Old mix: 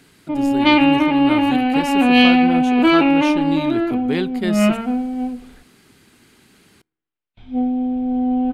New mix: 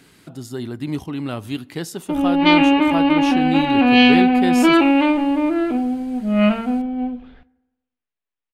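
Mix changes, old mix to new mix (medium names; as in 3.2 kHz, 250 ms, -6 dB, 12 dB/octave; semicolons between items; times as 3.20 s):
speech: send +7.0 dB; background: entry +1.80 s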